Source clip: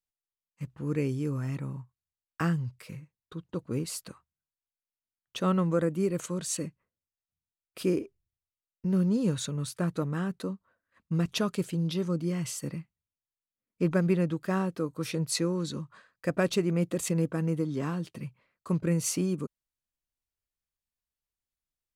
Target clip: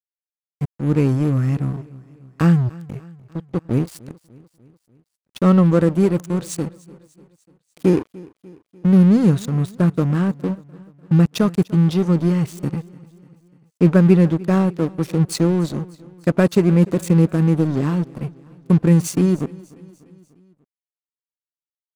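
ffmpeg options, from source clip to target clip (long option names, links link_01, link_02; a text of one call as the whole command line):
ffmpeg -i in.wav -filter_complex "[0:a]lowshelf=frequency=310:gain=11,aeval=exprs='sgn(val(0))*max(abs(val(0))-0.0188,0)':channel_layout=same,asplit=2[link_01][link_02];[link_02]aecho=0:1:296|592|888|1184:0.0794|0.0445|0.0249|0.0139[link_03];[link_01][link_03]amix=inputs=2:normalize=0,volume=7dB" out.wav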